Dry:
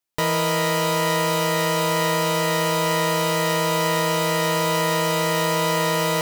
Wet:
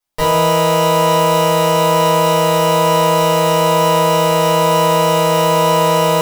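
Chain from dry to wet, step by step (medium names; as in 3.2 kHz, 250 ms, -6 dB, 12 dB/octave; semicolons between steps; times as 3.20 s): simulated room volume 240 m³, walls furnished, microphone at 5.5 m; trim -3.5 dB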